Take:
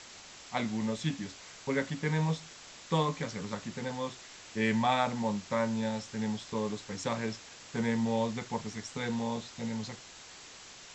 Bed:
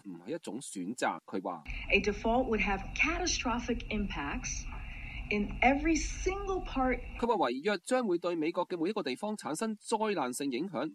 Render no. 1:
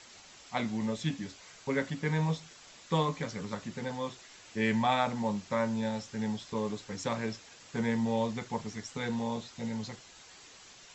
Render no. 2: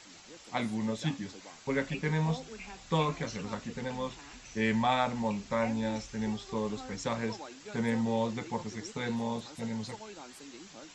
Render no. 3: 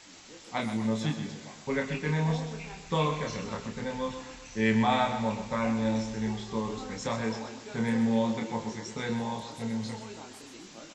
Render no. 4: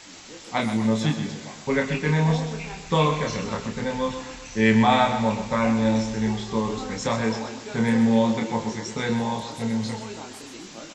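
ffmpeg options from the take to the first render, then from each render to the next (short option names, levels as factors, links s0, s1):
-af "afftdn=nr=6:nf=-51"
-filter_complex "[1:a]volume=0.168[s0];[0:a][s0]amix=inputs=2:normalize=0"
-filter_complex "[0:a]asplit=2[s0][s1];[s1]adelay=27,volume=0.596[s2];[s0][s2]amix=inputs=2:normalize=0,aecho=1:1:127|254|381|508|635|762:0.335|0.167|0.0837|0.0419|0.0209|0.0105"
-af "volume=2.24"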